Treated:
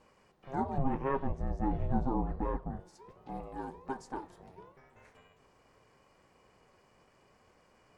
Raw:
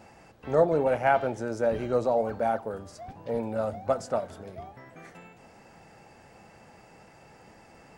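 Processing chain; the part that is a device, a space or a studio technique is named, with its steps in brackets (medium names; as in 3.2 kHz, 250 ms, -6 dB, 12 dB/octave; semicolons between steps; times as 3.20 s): alien voice (ring modulator 270 Hz; flange 0.8 Hz, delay 3.3 ms, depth 5.2 ms, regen -76%); 0.78–2.80 s: RIAA curve playback; trim -4.5 dB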